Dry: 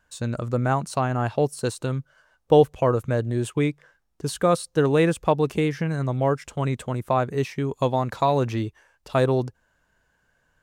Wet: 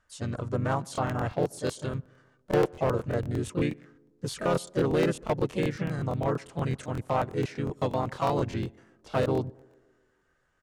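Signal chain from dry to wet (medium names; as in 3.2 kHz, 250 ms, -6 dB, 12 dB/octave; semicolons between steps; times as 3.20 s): low-pass 9.9 kHz 24 dB/octave; overload inside the chain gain 14 dB; harmony voices -4 st -5 dB, +3 st -7 dB; on a send: tape echo 133 ms, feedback 66%, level -23.5 dB, low-pass 1 kHz; on the sum: crackling interface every 0.12 s, samples 1024, repeat, from 0.93 s; trim -7 dB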